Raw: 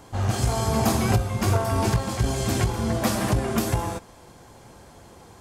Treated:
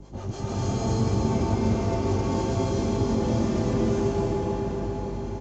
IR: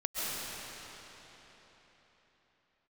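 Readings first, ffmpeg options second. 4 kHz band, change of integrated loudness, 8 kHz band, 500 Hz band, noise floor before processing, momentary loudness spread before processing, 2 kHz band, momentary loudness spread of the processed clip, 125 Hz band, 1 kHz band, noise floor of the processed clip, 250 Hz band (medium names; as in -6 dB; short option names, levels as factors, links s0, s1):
-7.0 dB, -2.0 dB, -9.0 dB, +2.0 dB, -49 dBFS, 4 LU, -8.5 dB, 7 LU, -2.0 dB, -4.0 dB, -36 dBFS, +2.0 dB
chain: -filter_complex "[0:a]highpass=88,highshelf=f=6000:g=-10,aecho=1:1:3.4:0.33,aeval=exprs='val(0)+0.0126*(sin(2*PI*50*n/s)+sin(2*PI*2*50*n/s)/2+sin(2*PI*3*50*n/s)/3+sin(2*PI*4*50*n/s)/4+sin(2*PI*5*50*n/s)/5)':c=same,equalizer=f=160:t=o:w=0.67:g=5,equalizer=f=400:t=o:w=0.67:g=10,equalizer=f=1600:t=o:w=0.67:g=-5,equalizer=f=6300:t=o:w=0.67:g=7,acompressor=threshold=0.1:ratio=6,acrossover=split=490[s0][s1];[s0]aeval=exprs='val(0)*(1-0.7/2+0.7/2*cos(2*PI*6.9*n/s))':c=same[s2];[s1]aeval=exprs='val(0)*(1-0.7/2-0.7/2*cos(2*PI*6.9*n/s))':c=same[s3];[s2][s3]amix=inputs=2:normalize=0,acrossover=split=190[s4][s5];[s5]acompressor=threshold=0.02:ratio=3[s6];[s4][s6]amix=inputs=2:normalize=0,aresample=16000,aresample=44100[s7];[1:a]atrim=start_sample=2205,asetrate=27783,aresample=44100[s8];[s7][s8]afir=irnorm=-1:irlink=0,volume=0.596"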